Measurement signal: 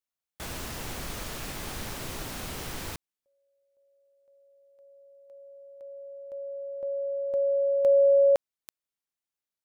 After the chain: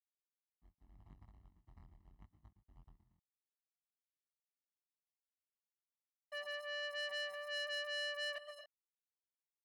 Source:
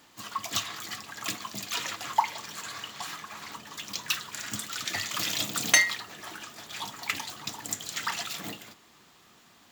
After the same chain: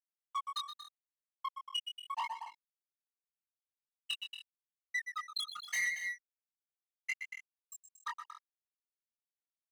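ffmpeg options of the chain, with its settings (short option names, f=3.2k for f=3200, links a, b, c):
-filter_complex "[0:a]asplit=2[a][b];[b]aeval=exprs='0.133*(abs(mod(val(0)/0.133+3,4)-2)-1)':c=same,volume=-7dB[c];[a][c]amix=inputs=2:normalize=0,adynamicequalizer=threshold=0.00447:dfrequency=7000:dqfactor=4.6:tfrequency=7000:tqfactor=4.6:attack=5:release=100:ratio=0.4:range=2.5:mode=cutabove:tftype=bell,afftfilt=real='re*gte(hypot(re,im),0.251)':imag='im*gte(hypot(re,im),0.251)':win_size=1024:overlap=0.75,acompressor=threshold=-29dB:ratio=16:attack=0.17:release=189:knee=6:detection=rms,afreqshift=29,asplit=2[d][e];[e]aecho=0:1:115|125|230|278:0.141|0.251|0.188|0.133[f];[d][f]amix=inputs=2:normalize=0,aeval=exprs='sgn(val(0))*max(abs(val(0))-0.00112,0)':c=same,flanger=delay=19.5:depth=4.1:speed=0.81,aeval=exprs='(tanh(200*val(0)+0.25)-tanh(0.25))/200':c=same,highpass=f=1.3k:p=1,highshelf=f=9.6k:g=-5.5,aecho=1:1:1:0.82,volume=13dB"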